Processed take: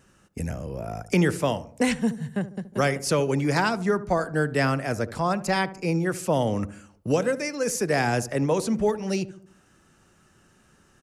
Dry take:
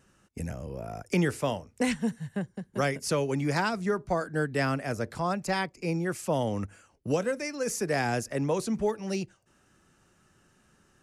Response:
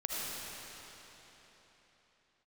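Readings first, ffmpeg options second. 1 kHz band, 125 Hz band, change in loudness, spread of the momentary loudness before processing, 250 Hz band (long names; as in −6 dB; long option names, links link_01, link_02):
+4.5 dB, +5.0 dB, +4.5 dB, 10 LU, +4.5 dB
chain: -filter_complex "[0:a]asplit=2[link_01][link_02];[link_02]adelay=73,lowpass=frequency=860:poles=1,volume=-13.5dB,asplit=2[link_03][link_04];[link_04]adelay=73,lowpass=frequency=860:poles=1,volume=0.54,asplit=2[link_05][link_06];[link_06]adelay=73,lowpass=frequency=860:poles=1,volume=0.54,asplit=2[link_07][link_08];[link_08]adelay=73,lowpass=frequency=860:poles=1,volume=0.54,asplit=2[link_09][link_10];[link_10]adelay=73,lowpass=frequency=860:poles=1,volume=0.54[link_11];[link_01][link_03][link_05][link_07][link_09][link_11]amix=inputs=6:normalize=0,volume=4.5dB"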